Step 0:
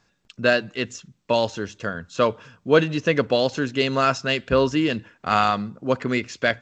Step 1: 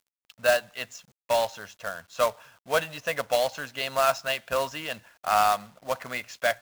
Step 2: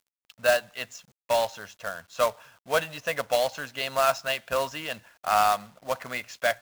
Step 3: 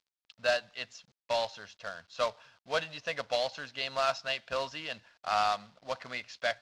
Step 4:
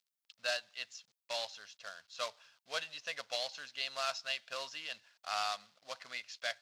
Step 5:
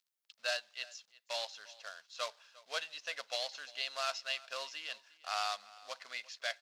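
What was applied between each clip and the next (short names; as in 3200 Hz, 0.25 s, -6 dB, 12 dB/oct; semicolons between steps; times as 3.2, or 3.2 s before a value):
resonant low shelf 490 Hz -10.5 dB, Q 3; companded quantiser 4-bit; gain -6 dB
nothing audible
synth low-pass 4600 Hz, resonance Q 2; gain -7 dB
tilt +3.5 dB/oct; notch 920 Hz, Q 25; gain -8.5 dB
HPF 350 Hz 12 dB/oct; echo 0.351 s -21 dB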